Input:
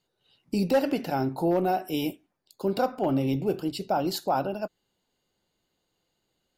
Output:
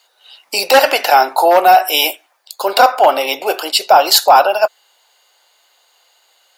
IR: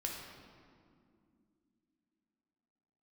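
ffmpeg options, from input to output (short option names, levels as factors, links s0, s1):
-af "highpass=f=670:w=0.5412,highpass=f=670:w=1.3066,apsyclip=18.8,volume=0.841"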